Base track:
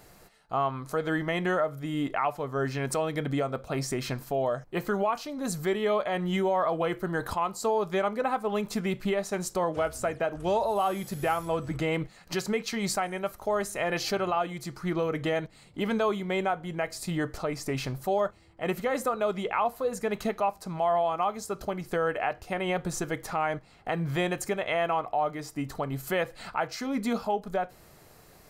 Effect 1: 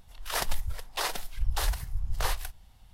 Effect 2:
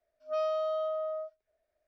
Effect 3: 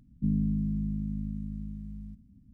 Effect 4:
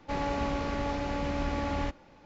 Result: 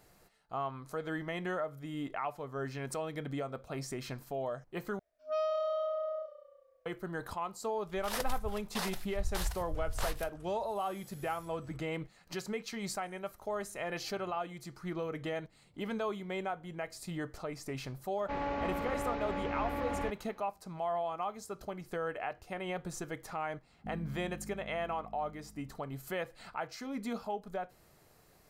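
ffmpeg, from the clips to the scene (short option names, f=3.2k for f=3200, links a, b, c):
-filter_complex "[0:a]volume=-9dB[a];[2:a]asplit=5[b][c][d][e][f];[c]adelay=180,afreqshift=-30,volume=-16.5dB[g];[d]adelay=360,afreqshift=-60,volume=-23.2dB[h];[e]adelay=540,afreqshift=-90,volume=-30dB[i];[f]adelay=720,afreqshift=-120,volume=-36.7dB[j];[b][g][h][i][j]amix=inputs=5:normalize=0[k];[1:a]agate=range=-33dB:threshold=-45dB:ratio=3:release=100:detection=peak[l];[4:a]bass=f=250:g=-6,treble=f=4k:g=-15[m];[a]asplit=2[n][o];[n]atrim=end=4.994[p];[k]atrim=end=1.87,asetpts=PTS-STARTPTS,volume=-2dB[q];[o]atrim=start=6.856[r];[l]atrim=end=2.93,asetpts=PTS-STARTPTS,volume=-7dB,afade=t=in:d=0.004:c=hsin,afade=t=out:st=2.926:d=0.004:c=hsin,adelay=343098S[s];[m]atrim=end=2.25,asetpts=PTS-STARTPTS,volume=-3dB,afade=t=in:d=0.004:c=hsin,afade=t=out:st=2.246:d=0.004:c=hsin,adelay=18200[t];[3:a]atrim=end=2.53,asetpts=PTS-STARTPTS,volume=-17dB,afade=t=in:d=0.004:c=hsin,afade=t=out:st=2.526:d=0.004:c=hsin,adelay=23620[u];[p][q]acrossfade=d=0.004:c1=hsin:c2=hsin[v];[v][r]acrossfade=d=0.004:c1=hsin:c2=hsin[w];[w][s][t][u]amix=inputs=4:normalize=0"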